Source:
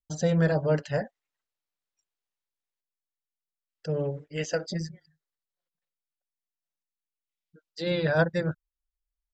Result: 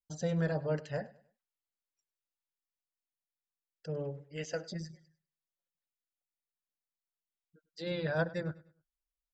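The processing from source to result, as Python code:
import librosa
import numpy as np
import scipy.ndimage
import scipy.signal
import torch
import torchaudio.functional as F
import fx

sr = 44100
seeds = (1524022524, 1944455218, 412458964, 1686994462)

y = fx.echo_feedback(x, sr, ms=101, feedback_pct=33, wet_db=-19.5)
y = y * librosa.db_to_amplitude(-8.5)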